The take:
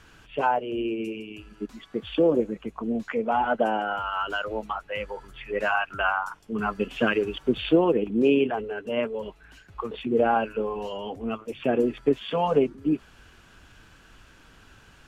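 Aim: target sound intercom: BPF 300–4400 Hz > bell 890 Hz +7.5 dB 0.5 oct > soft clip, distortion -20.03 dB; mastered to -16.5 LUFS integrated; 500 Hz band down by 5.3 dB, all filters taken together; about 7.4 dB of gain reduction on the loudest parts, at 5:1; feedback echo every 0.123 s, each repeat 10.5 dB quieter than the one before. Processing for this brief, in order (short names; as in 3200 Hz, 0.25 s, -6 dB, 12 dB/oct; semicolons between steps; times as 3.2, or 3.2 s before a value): bell 500 Hz -6.5 dB; compressor 5:1, threshold -27 dBFS; BPF 300–4400 Hz; bell 890 Hz +7.5 dB 0.5 oct; feedback echo 0.123 s, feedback 30%, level -10.5 dB; soft clip -19.5 dBFS; gain +16.5 dB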